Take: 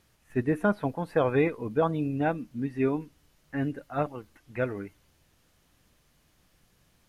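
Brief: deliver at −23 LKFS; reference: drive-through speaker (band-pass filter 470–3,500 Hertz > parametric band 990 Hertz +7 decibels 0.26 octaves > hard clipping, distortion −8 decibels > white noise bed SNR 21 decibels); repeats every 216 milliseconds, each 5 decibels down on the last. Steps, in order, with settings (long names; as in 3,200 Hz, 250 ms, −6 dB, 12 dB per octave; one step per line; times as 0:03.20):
band-pass filter 470–3,500 Hz
parametric band 990 Hz +7 dB 0.26 octaves
repeating echo 216 ms, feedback 56%, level −5 dB
hard clipping −26 dBFS
white noise bed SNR 21 dB
level +11 dB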